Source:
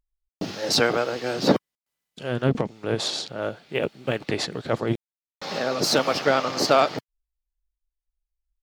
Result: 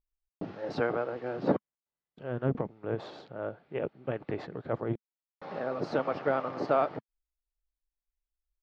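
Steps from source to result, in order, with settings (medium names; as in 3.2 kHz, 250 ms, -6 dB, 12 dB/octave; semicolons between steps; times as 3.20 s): low-pass 1.4 kHz 12 dB/octave; peaking EQ 220 Hz -3 dB 0.31 oct; trim -7 dB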